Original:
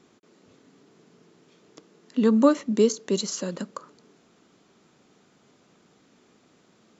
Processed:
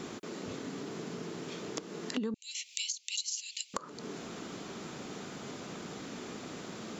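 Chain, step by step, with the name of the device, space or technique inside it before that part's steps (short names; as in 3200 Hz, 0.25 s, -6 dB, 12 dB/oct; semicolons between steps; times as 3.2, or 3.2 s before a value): 2.34–3.74 steep high-pass 2300 Hz 72 dB/oct; serial compression, leveller first (compressor 2:1, threshold -39 dBFS, peak gain reduction 13 dB; compressor 5:1, threshold -52 dBFS, peak gain reduction 21 dB); gain +17 dB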